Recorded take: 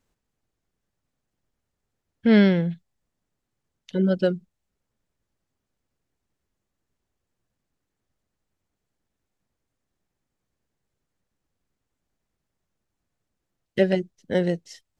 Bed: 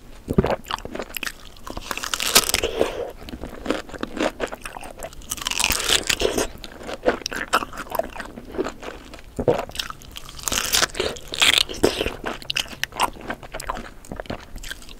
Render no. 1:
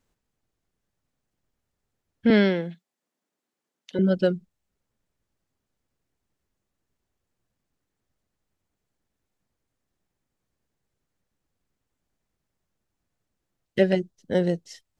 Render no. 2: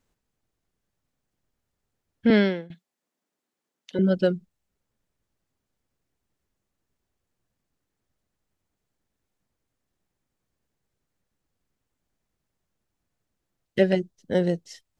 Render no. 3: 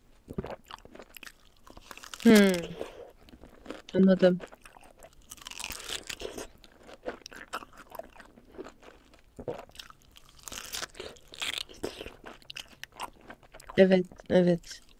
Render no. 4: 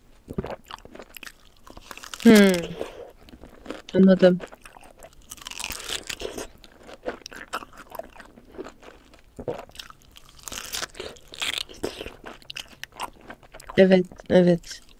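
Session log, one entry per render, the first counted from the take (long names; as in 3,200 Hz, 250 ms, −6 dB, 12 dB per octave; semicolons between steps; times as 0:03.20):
0:02.30–0:03.99: high-pass filter 220 Hz 24 dB per octave; 0:13.98–0:14.68: parametric band 2,200 Hz −5 dB
0:02.28–0:02.70: fade out equal-power, to −19 dB
mix in bed −18 dB
level +6 dB; brickwall limiter −3 dBFS, peak gain reduction 2.5 dB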